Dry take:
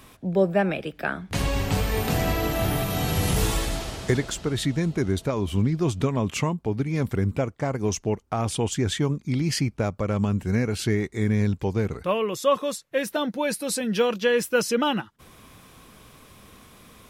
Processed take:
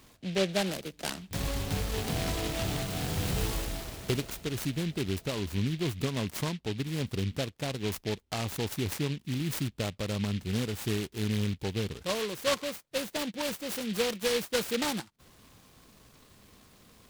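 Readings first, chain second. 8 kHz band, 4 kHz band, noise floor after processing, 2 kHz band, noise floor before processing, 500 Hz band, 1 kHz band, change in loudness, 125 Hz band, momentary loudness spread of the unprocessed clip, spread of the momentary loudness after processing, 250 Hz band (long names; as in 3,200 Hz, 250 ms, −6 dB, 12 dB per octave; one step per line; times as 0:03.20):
−5.5 dB, −2.5 dB, −60 dBFS, −6.5 dB, −52 dBFS, −8.5 dB, −9.5 dB, −7.0 dB, −7.5 dB, 5 LU, 5 LU, −7.5 dB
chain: short delay modulated by noise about 2,800 Hz, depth 0.15 ms
level −7.5 dB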